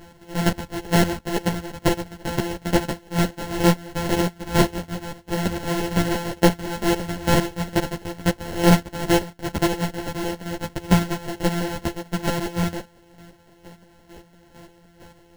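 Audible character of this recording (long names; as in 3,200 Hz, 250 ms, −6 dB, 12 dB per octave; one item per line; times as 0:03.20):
a buzz of ramps at a fixed pitch in blocks of 256 samples
chopped level 2.2 Hz, depth 65%, duty 25%
aliases and images of a low sample rate 1,200 Hz, jitter 0%
a shimmering, thickened sound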